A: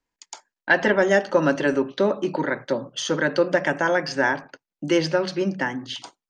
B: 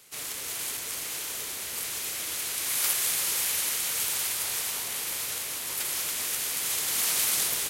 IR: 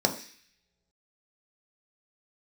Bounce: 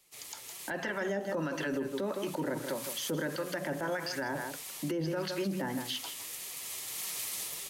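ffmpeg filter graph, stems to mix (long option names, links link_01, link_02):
-filter_complex "[0:a]acrossover=split=920[link_01][link_02];[link_01]aeval=exprs='val(0)*(1-0.7/2+0.7/2*cos(2*PI*1.6*n/s))':channel_layout=same[link_03];[link_02]aeval=exprs='val(0)*(1-0.7/2-0.7/2*cos(2*PI*1.6*n/s))':channel_layout=same[link_04];[link_03][link_04]amix=inputs=2:normalize=0,volume=-2dB,asplit=3[link_05][link_06][link_07];[link_06]volume=-11.5dB[link_08];[1:a]bandreject=frequency=1500:width=6,asoftclip=type=hard:threshold=-13.5dB,flanger=delay=5.2:depth=5.5:regen=34:speed=1.7:shape=sinusoidal,volume=-7.5dB[link_09];[link_07]apad=whole_len=339295[link_10];[link_09][link_10]sidechaincompress=threshold=-32dB:ratio=4:attack=7.3:release=460[link_11];[link_08]aecho=0:1:161:1[link_12];[link_05][link_11][link_12]amix=inputs=3:normalize=0,acrossover=split=300[link_13][link_14];[link_14]acompressor=threshold=-29dB:ratio=2[link_15];[link_13][link_15]amix=inputs=2:normalize=0,alimiter=level_in=1.5dB:limit=-24dB:level=0:latency=1:release=46,volume=-1.5dB"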